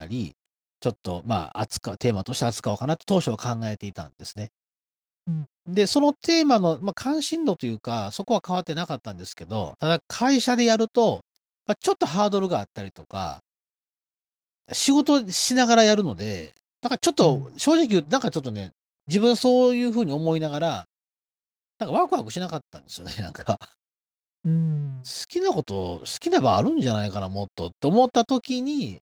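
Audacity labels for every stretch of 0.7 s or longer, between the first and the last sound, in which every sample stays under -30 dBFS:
4.460000	5.280000	silence
13.340000	14.720000	silence
20.800000	21.810000	silence
23.640000	24.450000	silence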